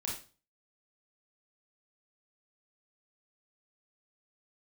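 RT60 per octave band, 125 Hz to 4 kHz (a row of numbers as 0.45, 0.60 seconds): 0.50, 0.40, 0.35, 0.35, 0.35, 0.35 seconds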